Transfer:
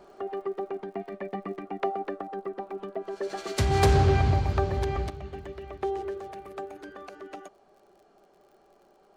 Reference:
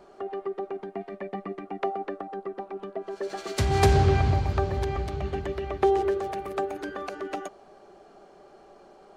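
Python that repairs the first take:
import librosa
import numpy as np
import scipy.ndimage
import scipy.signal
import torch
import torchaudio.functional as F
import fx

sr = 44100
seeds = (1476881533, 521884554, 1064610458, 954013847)

y = fx.fix_declip(x, sr, threshold_db=-14.0)
y = fx.fix_declick_ar(y, sr, threshold=6.5)
y = fx.fix_level(y, sr, at_s=5.1, step_db=8.5)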